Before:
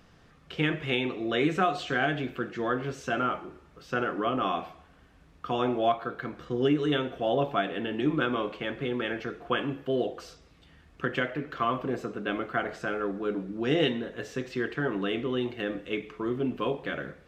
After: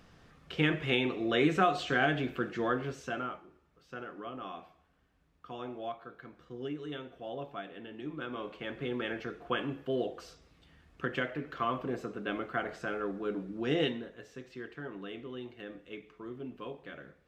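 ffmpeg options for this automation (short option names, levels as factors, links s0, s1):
-af "volume=2.66,afade=t=out:st=2.57:d=0.86:silence=0.223872,afade=t=in:st=8.16:d=0.74:silence=0.334965,afade=t=out:st=13.81:d=0.4:silence=0.375837"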